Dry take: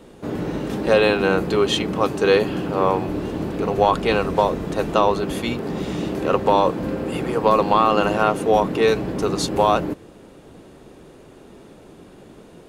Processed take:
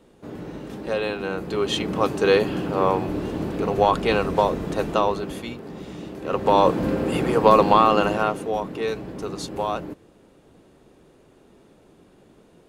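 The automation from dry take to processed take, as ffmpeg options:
ffmpeg -i in.wav -af "volume=11dB,afade=type=in:start_time=1.37:duration=0.6:silence=0.398107,afade=type=out:start_time=4.73:duration=0.85:silence=0.354813,afade=type=in:start_time=6.22:duration=0.49:silence=0.237137,afade=type=out:start_time=7.62:duration=0.89:silence=0.281838" out.wav

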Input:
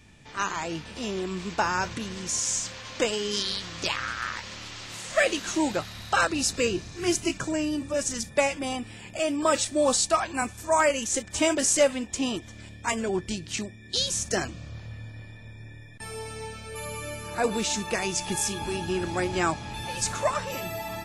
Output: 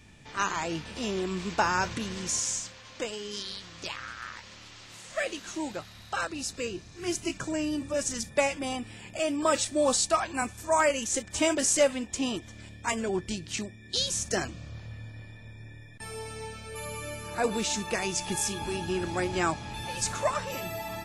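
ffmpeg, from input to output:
ffmpeg -i in.wav -af "volume=6.5dB,afade=type=out:start_time=2.26:duration=0.48:silence=0.375837,afade=type=in:start_time=6.84:duration=0.88:silence=0.473151" out.wav

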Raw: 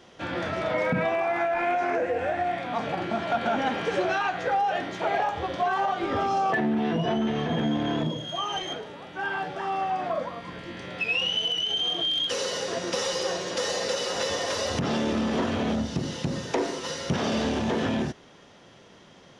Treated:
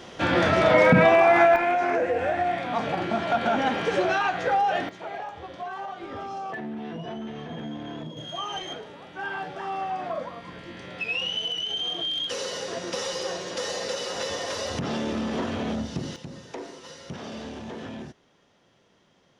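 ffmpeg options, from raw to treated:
ffmpeg -i in.wav -af "asetnsamples=nb_out_samples=441:pad=0,asendcmd='1.56 volume volume 2dB;4.89 volume volume -9.5dB;8.17 volume volume -2.5dB;16.16 volume volume -11dB',volume=9dB" out.wav

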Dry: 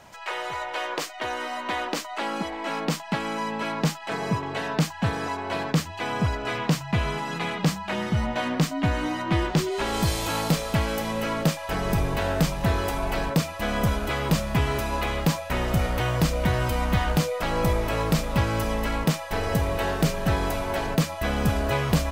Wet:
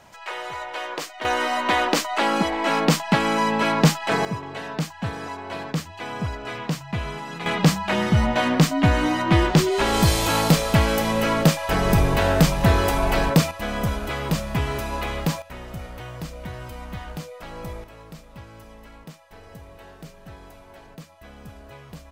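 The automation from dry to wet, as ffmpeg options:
ffmpeg -i in.wav -af "asetnsamples=nb_out_samples=441:pad=0,asendcmd='1.25 volume volume 8dB;4.25 volume volume -3.5dB;7.46 volume volume 6dB;13.51 volume volume -1dB;15.42 volume volume -11.5dB;17.84 volume volume -19dB',volume=-1dB" out.wav

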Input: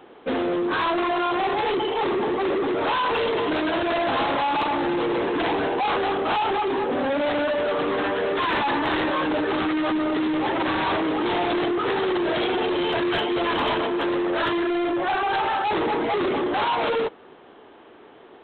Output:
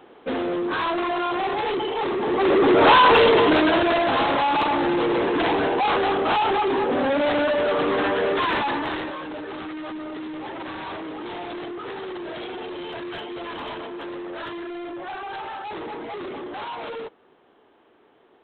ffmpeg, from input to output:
ffmpeg -i in.wav -af "volume=10dB,afade=type=in:start_time=2.21:duration=0.7:silence=0.266073,afade=type=out:start_time=2.91:duration=1.13:silence=0.398107,afade=type=out:start_time=8.29:duration=0.89:silence=0.251189" out.wav

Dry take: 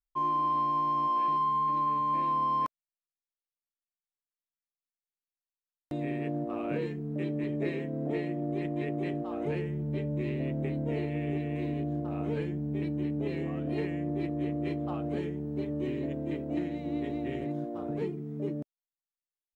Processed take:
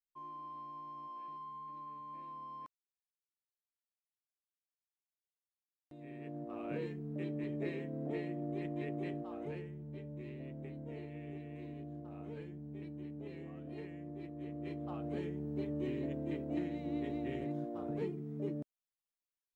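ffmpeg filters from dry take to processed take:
ffmpeg -i in.wav -af "volume=2dB,afade=type=in:start_time=5.96:duration=0.85:silence=0.237137,afade=type=out:start_time=9.05:duration=0.74:silence=0.446684,afade=type=in:start_time=14.34:duration=1.1:silence=0.354813" out.wav

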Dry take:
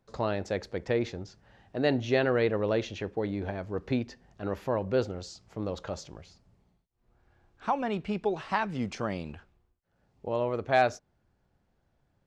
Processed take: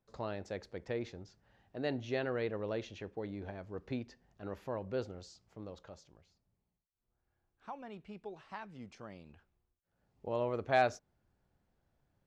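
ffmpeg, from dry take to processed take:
ffmpeg -i in.wav -af "volume=2dB,afade=type=out:start_time=5.2:duration=0.8:silence=0.446684,afade=type=in:start_time=9.25:duration=1.16:silence=0.251189" out.wav

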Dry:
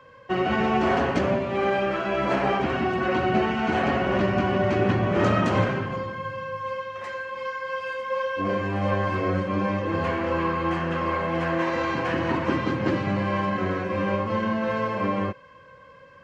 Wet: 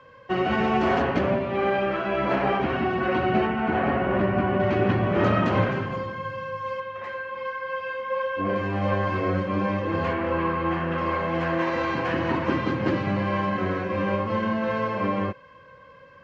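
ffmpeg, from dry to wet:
ffmpeg -i in.wav -af "asetnsamples=nb_out_samples=441:pad=0,asendcmd='1.02 lowpass f 3800;3.47 lowpass f 2200;4.6 lowpass f 3900;5.72 lowpass f 6600;6.8 lowpass f 3200;8.56 lowpass f 5400;10.13 lowpass f 3300;10.98 lowpass f 5600',lowpass=6300" out.wav

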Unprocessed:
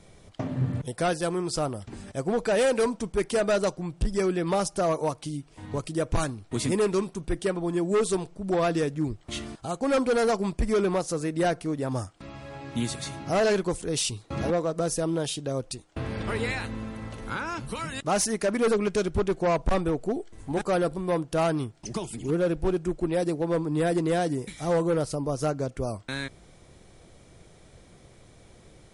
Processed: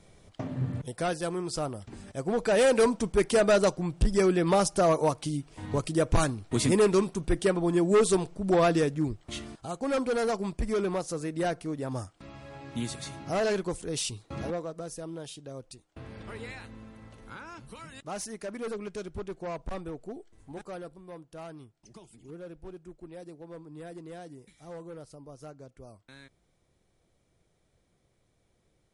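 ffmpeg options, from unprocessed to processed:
ffmpeg -i in.wav -af "volume=2dB,afade=type=in:start_time=2.17:duration=0.66:silence=0.501187,afade=type=out:start_time=8.61:duration=0.82:silence=0.473151,afade=type=out:start_time=14.22:duration=0.62:silence=0.421697,afade=type=out:start_time=20.34:duration=0.66:silence=0.473151" out.wav

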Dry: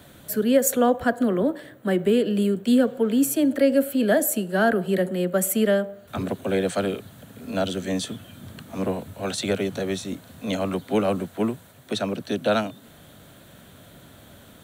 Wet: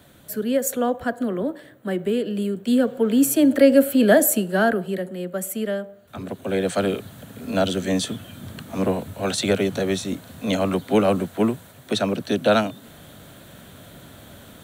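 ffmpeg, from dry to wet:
ffmpeg -i in.wav -af "volume=14.5dB,afade=type=in:start_time=2.52:duration=1.05:silence=0.398107,afade=type=out:start_time=4.24:duration=0.77:silence=0.298538,afade=type=in:start_time=6.22:duration=0.75:silence=0.334965" out.wav

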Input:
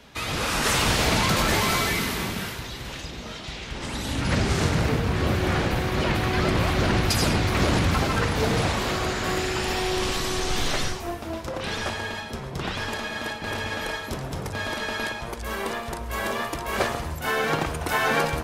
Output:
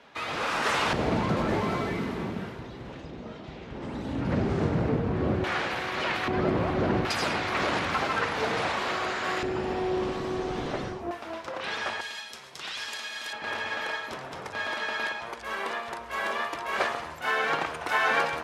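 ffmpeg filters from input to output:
ffmpeg -i in.wav -af "asetnsamples=nb_out_samples=441:pad=0,asendcmd='0.93 bandpass f 320;5.44 bandpass f 1700;6.28 bandpass f 420;7.05 bandpass f 1300;9.43 bandpass f 360;11.11 bandpass f 1500;12.01 bandpass f 5100;13.33 bandpass f 1500',bandpass=frequency=1000:width_type=q:width=0.55:csg=0" out.wav

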